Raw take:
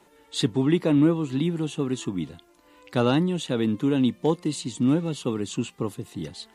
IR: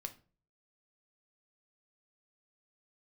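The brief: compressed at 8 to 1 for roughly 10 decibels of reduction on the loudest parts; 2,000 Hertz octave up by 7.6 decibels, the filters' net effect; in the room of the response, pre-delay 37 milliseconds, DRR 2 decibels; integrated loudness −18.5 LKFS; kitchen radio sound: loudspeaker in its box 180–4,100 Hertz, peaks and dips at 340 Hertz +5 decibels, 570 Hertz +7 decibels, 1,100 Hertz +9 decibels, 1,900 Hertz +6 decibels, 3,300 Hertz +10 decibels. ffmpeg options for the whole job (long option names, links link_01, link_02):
-filter_complex "[0:a]equalizer=frequency=2000:width_type=o:gain=4.5,acompressor=threshold=-26dB:ratio=8,asplit=2[link_01][link_02];[1:a]atrim=start_sample=2205,adelay=37[link_03];[link_02][link_03]afir=irnorm=-1:irlink=0,volume=1dB[link_04];[link_01][link_04]amix=inputs=2:normalize=0,highpass=180,equalizer=frequency=340:width_type=q:width=4:gain=5,equalizer=frequency=570:width_type=q:width=4:gain=7,equalizer=frequency=1100:width_type=q:width=4:gain=9,equalizer=frequency=1900:width_type=q:width=4:gain=6,equalizer=frequency=3300:width_type=q:width=4:gain=10,lowpass=frequency=4100:width=0.5412,lowpass=frequency=4100:width=1.3066,volume=9.5dB"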